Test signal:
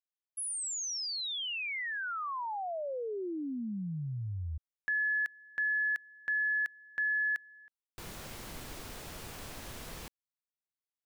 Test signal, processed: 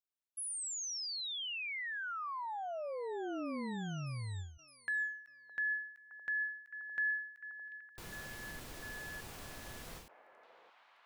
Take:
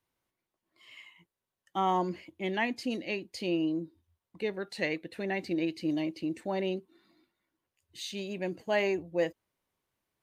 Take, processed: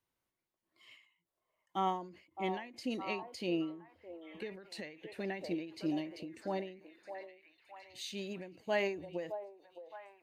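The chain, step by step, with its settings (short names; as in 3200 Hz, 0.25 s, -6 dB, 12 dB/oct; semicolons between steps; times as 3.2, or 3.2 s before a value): delay with a stepping band-pass 0.615 s, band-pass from 650 Hz, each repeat 0.7 oct, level -6 dB; ending taper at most 100 dB/s; gain -4 dB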